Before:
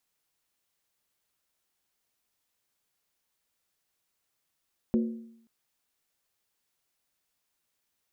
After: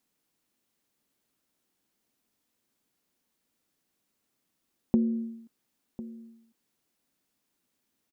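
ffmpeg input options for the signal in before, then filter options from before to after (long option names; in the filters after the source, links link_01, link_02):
-f lavfi -i "aevalsrc='0.1*pow(10,-3*t/0.73)*sin(2*PI*228*t)+0.0422*pow(10,-3*t/0.578)*sin(2*PI*363.4*t)+0.0178*pow(10,-3*t/0.499)*sin(2*PI*487*t)+0.0075*pow(10,-3*t/0.482)*sin(2*PI*523.5*t)+0.00316*pow(10,-3*t/0.448)*sin(2*PI*604.9*t)':duration=0.53:sample_rate=44100"
-filter_complex "[0:a]equalizer=frequency=250:width=0.97:gain=13.5,acompressor=threshold=-22dB:ratio=6,asplit=2[link_01][link_02];[link_02]adelay=1050,volume=-16dB,highshelf=frequency=4000:gain=-23.6[link_03];[link_01][link_03]amix=inputs=2:normalize=0"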